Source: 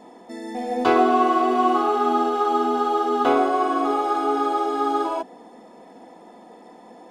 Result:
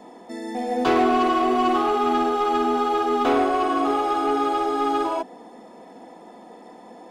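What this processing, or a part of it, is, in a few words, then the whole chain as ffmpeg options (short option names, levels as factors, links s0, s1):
one-band saturation: -filter_complex "[0:a]acrossover=split=330|3400[s0][s1][s2];[s1]asoftclip=type=tanh:threshold=0.119[s3];[s0][s3][s2]amix=inputs=3:normalize=0,volume=1.19"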